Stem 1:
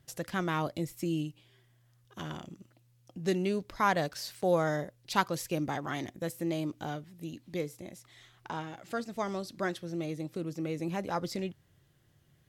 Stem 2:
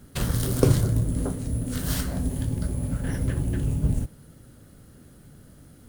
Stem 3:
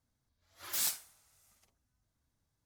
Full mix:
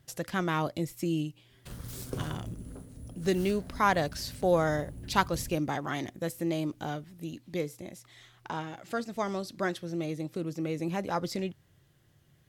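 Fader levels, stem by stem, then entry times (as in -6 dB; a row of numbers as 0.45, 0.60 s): +2.0, -17.5, -13.5 dB; 0.00, 1.50, 1.15 s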